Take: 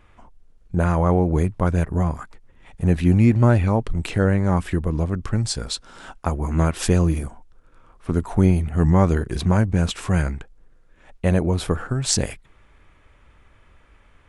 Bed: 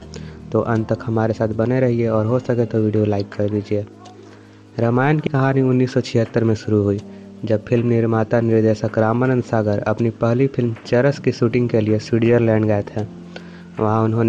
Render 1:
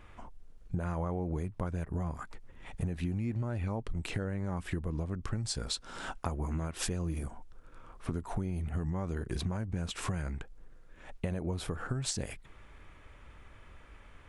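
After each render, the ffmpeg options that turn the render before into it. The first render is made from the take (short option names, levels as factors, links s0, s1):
-af "alimiter=limit=0.251:level=0:latency=1:release=152,acompressor=threshold=0.0251:ratio=5"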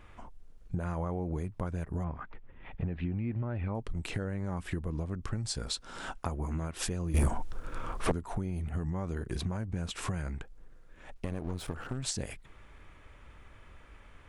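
-filter_complex "[0:a]asettb=1/sr,asplit=3[s0][s1][s2];[s0]atrim=end=2.044[s3];[s1]atrim=start=2.04:end=3.75,asetpts=PTS-STARTPTS,afade=t=in:d=0.004:c=qsin,afade=t=out:st=1.706:d=0.004:c=qsin,lowpass=f=3100:w=0.5412,lowpass=f=3100:w=1.3066[s4];[s2]atrim=start=3.746[s5];[s3][s4]acrossfade=d=0.004:c1=hsin:c2=qsin[s6];[s6][s5]acrossfade=d=0.004:c1=qsin:c2=hsin,asettb=1/sr,asplit=3[s7][s8][s9];[s7]atrim=end=7.144[s10];[s8]atrim=start=7.14:end=8.12,asetpts=PTS-STARTPTS,afade=t=in:d=0.004:c=qsin,afade=t=out:st=0.976:d=0.004:c=qsin,aeval=exprs='0.0944*sin(PI/2*3.55*val(0)/0.0944)':c=same[s11];[s9]atrim=start=8.116[s12];[s10][s11]acrossfade=d=0.004:c1=hsin:c2=qsin[s13];[s13][s12]acrossfade=d=0.004:c1=qsin:c2=hsin,asettb=1/sr,asplit=3[s14][s15][s16];[s14]atrim=end=11.134[s17];[s15]atrim=start=11.13:end=12.03,asetpts=PTS-STARTPTS,afade=t=in:d=0.004:c=qsin,afade=t=out:st=0.896:d=0.004:c=qsin,aeval=exprs='clip(val(0),-1,0.00668)':c=same[s18];[s16]atrim=start=12.026[s19];[s17][s18]acrossfade=d=0.004:c1=hsin:c2=qsin[s20];[s20][s19]acrossfade=d=0.004:c1=qsin:c2=hsin"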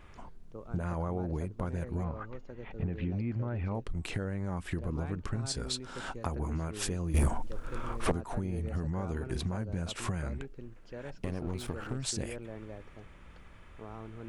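-filter_complex "[1:a]volume=0.0376[s0];[0:a][s0]amix=inputs=2:normalize=0"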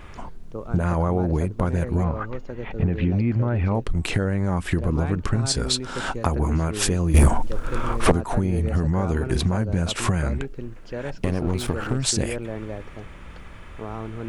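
-af "volume=3.98"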